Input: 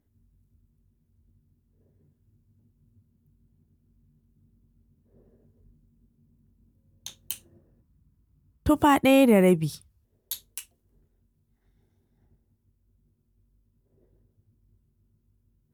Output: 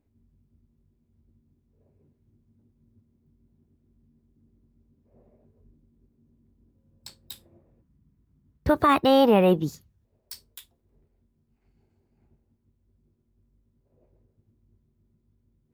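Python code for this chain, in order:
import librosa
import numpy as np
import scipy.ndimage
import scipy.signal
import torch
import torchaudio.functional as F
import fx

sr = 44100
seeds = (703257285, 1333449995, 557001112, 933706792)

y = fx.high_shelf(x, sr, hz=5700.0, db=-10.5)
y = fx.formant_shift(y, sr, semitones=4)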